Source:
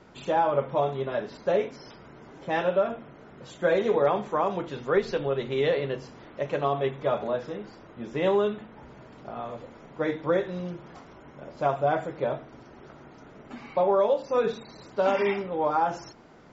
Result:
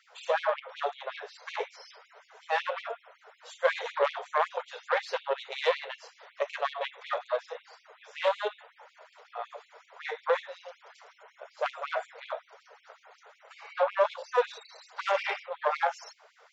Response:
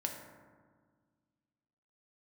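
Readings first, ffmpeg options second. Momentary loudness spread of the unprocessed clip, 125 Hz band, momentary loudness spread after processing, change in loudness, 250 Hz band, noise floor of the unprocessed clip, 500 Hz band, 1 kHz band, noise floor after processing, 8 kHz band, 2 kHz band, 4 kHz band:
18 LU, under -40 dB, 17 LU, -4.5 dB, under -30 dB, -50 dBFS, -6.5 dB, -3.0 dB, -65 dBFS, n/a, +1.5 dB, +2.0 dB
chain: -af "aeval=exprs='0.266*(cos(1*acos(clip(val(0)/0.266,-1,1)))-cos(1*PI/2))+0.0531*(cos(4*acos(clip(val(0)/0.266,-1,1)))-cos(4*PI/2))':c=same,afftfilt=real='re*gte(b*sr/1024,400*pow(2200/400,0.5+0.5*sin(2*PI*5.4*pts/sr)))':imag='im*gte(b*sr/1024,400*pow(2200/400,0.5+0.5*sin(2*PI*5.4*pts/sr)))':win_size=1024:overlap=0.75"

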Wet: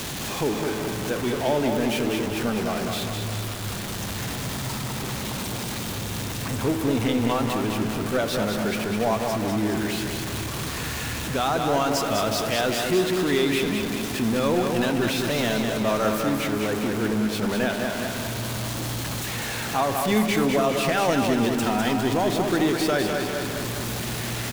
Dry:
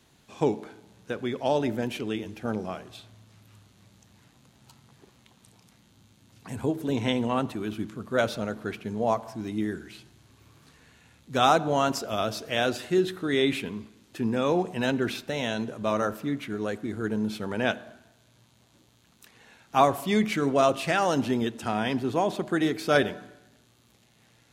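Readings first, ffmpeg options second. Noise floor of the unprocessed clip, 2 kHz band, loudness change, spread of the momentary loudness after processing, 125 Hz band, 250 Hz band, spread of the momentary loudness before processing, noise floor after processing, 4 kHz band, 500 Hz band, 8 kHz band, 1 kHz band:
-62 dBFS, +5.0 dB, +2.5 dB, 7 LU, +7.0 dB, +5.0 dB, 11 LU, -31 dBFS, +6.5 dB, +3.0 dB, +12.5 dB, +2.0 dB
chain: -af "aeval=exprs='val(0)+0.5*0.0501*sgn(val(0))':c=same,alimiter=limit=-13.5dB:level=0:latency=1:release=141,aecho=1:1:203|406|609|812|1015|1218|1421|1624:0.562|0.332|0.196|0.115|0.0681|0.0402|0.0237|0.014"

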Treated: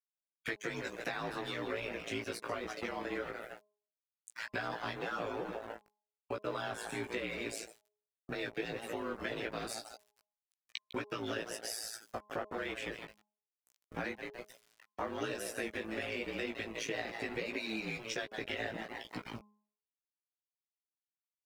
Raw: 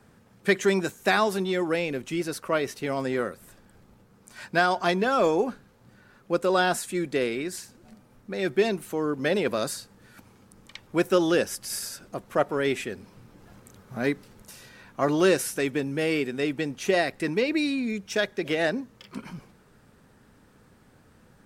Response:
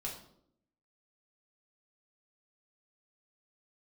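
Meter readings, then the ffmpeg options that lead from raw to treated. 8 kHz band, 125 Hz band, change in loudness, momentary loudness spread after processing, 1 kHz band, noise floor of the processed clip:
-11.0 dB, -13.5 dB, -13.5 dB, 9 LU, -13.0 dB, under -85 dBFS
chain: -filter_complex "[0:a]asplit=5[a][b][c][d][e];[b]adelay=153,afreqshift=64,volume=-11dB[f];[c]adelay=306,afreqshift=128,volume=-19dB[g];[d]adelay=459,afreqshift=192,volume=-26.9dB[h];[e]adelay=612,afreqshift=256,volume=-34.9dB[i];[a][f][g][h][i]amix=inputs=5:normalize=0,aeval=exprs='val(0)*sin(2*PI*56*n/s)':c=same,equalizer=f=2.4k:t=o:w=2.3:g=5,acrossover=split=160|380[j][k][l];[j]acompressor=threshold=-46dB:ratio=4[m];[k]acompressor=threshold=-43dB:ratio=4[n];[l]acompressor=threshold=-36dB:ratio=4[o];[m][n][o]amix=inputs=3:normalize=0,aeval=exprs='val(0)*gte(abs(val(0)),0.0112)':c=same,afftdn=nr=17:nf=-49,lowshelf=f=360:g=-4,bandreject=f=209:t=h:w=4,bandreject=f=418:t=h:w=4,bandreject=f=627:t=h:w=4,bandreject=f=836:t=h:w=4,bandreject=f=1.045k:t=h:w=4,acompressor=threshold=-43dB:ratio=2,flanger=delay=16:depth=2.3:speed=1.1,volume=7dB"

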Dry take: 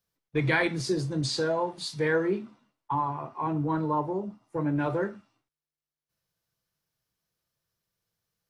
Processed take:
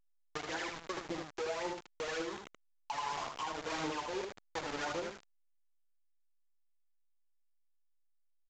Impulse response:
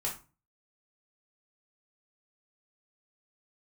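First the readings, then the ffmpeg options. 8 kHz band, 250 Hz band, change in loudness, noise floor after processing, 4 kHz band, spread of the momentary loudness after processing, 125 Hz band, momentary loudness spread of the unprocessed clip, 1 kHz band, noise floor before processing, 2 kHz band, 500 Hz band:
-5.5 dB, -15.0 dB, -11.0 dB, -72 dBFS, -6.5 dB, 7 LU, -23.0 dB, 8 LU, -8.0 dB, under -85 dBFS, -10.0 dB, -11.0 dB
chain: -filter_complex "[0:a]lowpass=f=2k:w=0.5412,lowpass=f=2k:w=1.3066,agate=range=-33dB:threshold=-52dB:ratio=3:detection=peak,asoftclip=type=hard:threshold=-31.5dB,areverse,acompressor=threshold=-46dB:ratio=6,areverse,highpass=370,aphaser=in_gain=1:out_gain=1:delay=2.5:decay=0.64:speed=1.8:type=triangular,acrusher=bits=7:mix=0:aa=0.000001,alimiter=level_in=17.5dB:limit=-24dB:level=0:latency=1:release=476,volume=-17.5dB,asplit=2[a][b];[b]aecho=0:1:77:0.531[c];[a][c]amix=inputs=2:normalize=0,volume=12dB" -ar 16000 -c:a pcm_alaw

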